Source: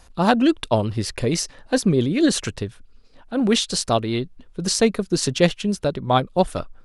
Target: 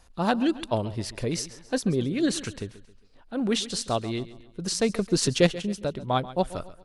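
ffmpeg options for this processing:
ffmpeg -i in.wav -filter_complex "[0:a]asettb=1/sr,asplit=3[link_01][link_02][link_03];[link_01]atrim=end=4.894[link_04];[link_02]atrim=start=4.89:end=5.47,asetpts=PTS-STARTPTS,afade=type=in:duration=0.004:curve=qsin,afade=type=out:start_time=0.576:duration=0.004:curve=qsin,acontrast=30[link_05];[link_03]atrim=start=5.466[link_06];[link_04][link_05]acrossfade=duration=0.004:curve1=hsin:curve2=qsin[link_07];[link_07][link_06]acrossfade=duration=0.004:curve1=qsin:curve2=hsin,aecho=1:1:135|270|405|540:0.15|0.0628|0.0264|0.0111,volume=-7dB" out.wav

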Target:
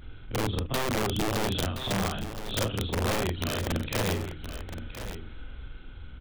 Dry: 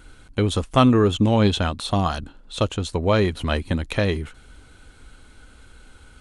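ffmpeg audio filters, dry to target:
ffmpeg -i in.wav -filter_complex "[0:a]afftfilt=real='re':imag='-im':win_size=4096:overlap=0.75,lowshelf=frequency=310:gain=10.5,bandreject=frequency=150.9:width_type=h:width=4,bandreject=frequency=301.8:width_type=h:width=4,acrossover=split=310[link_01][link_02];[link_02]dynaudnorm=framelen=140:gausssize=11:maxgain=3.5dB[link_03];[link_01][link_03]amix=inputs=2:normalize=0,adynamicequalizer=threshold=0.0158:dfrequency=950:dqfactor=1.2:tfrequency=950:tqfactor=1.2:attack=5:release=100:ratio=0.375:range=2.5:mode=cutabove:tftype=bell,aresample=8000,aeval=exprs='clip(val(0),-1,0.188)':channel_layout=same,aresample=44100,acompressor=threshold=-33dB:ratio=2,crystalizer=i=2.5:c=0,aeval=exprs='(mod(12.6*val(0)+1,2)-1)/12.6':channel_layout=same,aecho=1:1:1021:0.282" out.wav

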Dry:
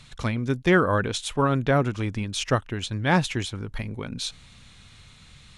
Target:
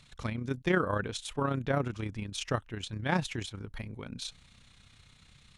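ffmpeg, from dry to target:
ffmpeg -i in.wav -af "tremolo=f=31:d=0.571,volume=-6dB" out.wav

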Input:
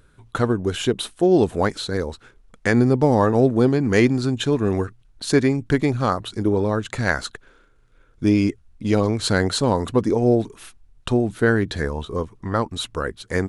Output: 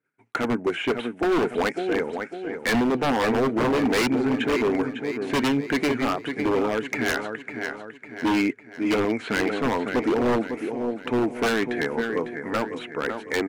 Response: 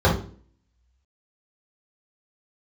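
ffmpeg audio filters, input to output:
-filter_complex "[0:a]aemphasis=mode=reproduction:type=50fm,agate=range=-33dB:threshold=-42dB:ratio=3:detection=peak,acrossover=split=4800[link_01][link_02];[link_01]highpass=frequency=190:width=0.5412,highpass=frequency=190:width=1.3066,equalizer=frequency=190:width_type=q:width=4:gain=-10,equalizer=frequency=350:width_type=q:width=4:gain=-4,equalizer=frequency=550:width_type=q:width=4:gain=-6,equalizer=frequency=1100:width_type=q:width=4:gain=-8,equalizer=frequency=2200:width_type=q:width=4:gain=9,lowpass=frequency=2800:width=0.5412,lowpass=frequency=2800:width=1.3066[link_03];[link_02]acompressor=threshold=-56dB:ratio=6[link_04];[link_03][link_04]amix=inputs=2:normalize=0,asoftclip=type=hard:threshold=-14.5dB,flanger=delay=0.1:depth=8.2:regen=70:speed=0.46:shape=triangular,aecho=1:1:552|1104|1656|2208|2760:0.355|0.163|0.0751|0.0345|0.0159,aeval=exprs='0.0708*(abs(mod(val(0)/0.0708+3,4)-2)-1)':channel_layout=same,volume=7dB"

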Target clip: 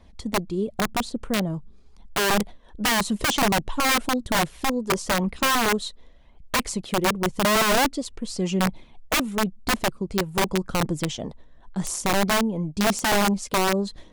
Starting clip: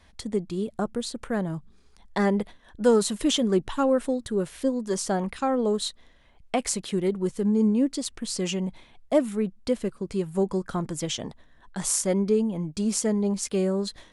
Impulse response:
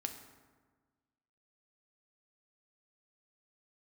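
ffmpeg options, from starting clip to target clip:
-af "equalizer=frequency=100:width_type=o:width=0.67:gain=-5,equalizer=frequency=1600:width_type=o:width=0.67:gain=-5,equalizer=frequency=10000:width_type=o:width=0.67:gain=-4,aphaser=in_gain=1:out_gain=1:delay=2.3:decay=0.31:speed=0.92:type=triangular,tiltshelf=frequency=940:gain=4,aeval=exprs='(mod(6.68*val(0)+1,2)-1)/6.68':channel_layout=same,volume=1dB"

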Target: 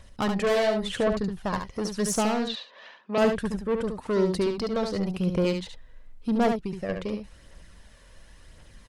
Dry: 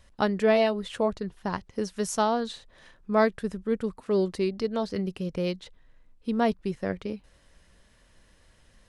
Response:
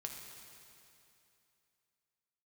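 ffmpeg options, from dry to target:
-filter_complex "[0:a]asettb=1/sr,asplit=3[link_01][link_02][link_03];[link_01]atrim=end=6.484[link_04];[link_02]atrim=start=6.48:end=6.89,asetpts=PTS-STARTPTS,afade=type=in:duration=0.004:curve=qsin,afade=type=out:start_time=0.406:duration=0.004:curve=qsin,acompressor=threshold=-32dB:ratio=5[link_05];[link_03]atrim=start=6.886[link_06];[link_04][link_05]acrossfade=duration=0.004:curve1=hsin:curve2=qsin[link_07];[link_07][link_06]acrossfade=duration=0.004:curve1=qsin:curve2=hsin,asoftclip=type=tanh:threshold=-26dB,aphaser=in_gain=1:out_gain=1:delay=2.1:decay=0.38:speed=0.93:type=triangular,asettb=1/sr,asplit=3[link_08][link_09][link_10];[link_08]atrim=end=2.484[link_11];[link_09]atrim=start=2.48:end=3.18,asetpts=PTS-STARTPTS,afade=type=in:duration=0.004:curve=qsin,afade=type=out:start_time=0.696:duration=0.004:curve=qsin,highpass=frequency=260:width=0.5412,highpass=frequency=260:width=1.3066,equalizer=frequency=320:width_type=q:width=4:gain=-10,equalizer=frequency=1000:width_type=q:width=4:gain=6,equalizer=frequency=2700:width_type=q:width=4:gain=5,lowpass=frequency=5000:width=0.5412,lowpass=frequency=5000:width=1.3066[link_12];[link_10]atrim=start=3.176[link_13];[link_11][link_12]acrossfade=duration=0.004:curve1=hsin:curve2=qsin[link_14];[link_14][link_13]acrossfade=duration=0.004:curve1=qsin:curve2=hsin,aecho=1:1:71:0.501,volume=4.5dB"

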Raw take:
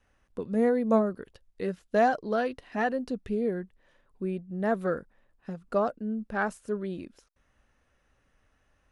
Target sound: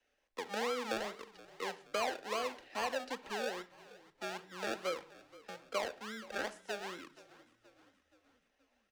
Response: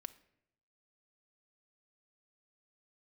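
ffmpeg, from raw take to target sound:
-filter_complex "[0:a]acrossover=split=110|1700[link_01][link_02][link_03];[link_02]acrusher=samples=34:mix=1:aa=0.000001:lfo=1:lforange=20.4:lforate=2.4[link_04];[link_01][link_04][link_03]amix=inputs=3:normalize=0,acrossover=split=170[link_05][link_06];[link_06]acompressor=threshold=-27dB:ratio=4[link_07];[link_05][link_07]amix=inputs=2:normalize=0,acrossover=split=390 7000:gain=0.0891 1 0.224[link_08][link_09][link_10];[link_08][link_09][link_10]amix=inputs=3:normalize=0,asplit=5[link_11][link_12][link_13][link_14][link_15];[link_12]adelay=475,afreqshift=-36,volume=-20dB[link_16];[link_13]adelay=950,afreqshift=-72,volume=-25.8dB[link_17];[link_14]adelay=1425,afreqshift=-108,volume=-31.7dB[link_18];[link_15]adelay=1900,afreqshift=-144,volume=-37.5dB[link_19];[link_11][link_16][link_17][link_18][link_19]amix=inputs=5:normalize=0[link_20];[1:a]atrim=start_sample=2205,afade=type=out:start_time=0.21:duration=0.01,atrim=end_sample=9702[link_21];[link_20][link_21]afir=irnorm=-1:irlink=0,volume=2dB"

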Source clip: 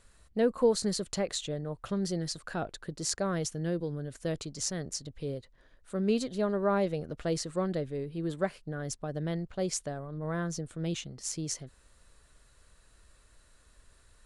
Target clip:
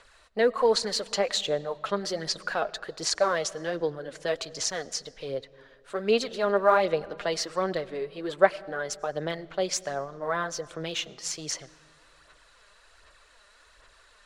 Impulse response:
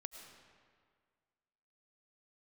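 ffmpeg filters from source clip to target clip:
-filter_complex "[0:a]acrossover=split=480 5700:gain=0.0794 1 0.158[link_01][link_02][link_03];[link_01][link_02][link_03]amix=inputs=3:normalize=0,aphaser=in_gain=1:out_gain=1:delay=5:decay=0.47:speed=1.3:type=sinusoidal,asplit=2[link_04][link_05];[1:a]atrim=start_sample=2205,lowshelf=frequency=300:gain=12[link_06];[link_05][link_06]afir=irnorm=-1:irlink=0,volume=-10.5dB[link_07];[link_04][link_07]amix=inputs=2:normalize=0,volume=8.5dB" -ar 48000 -c:a libmp3lame -b:a 112k

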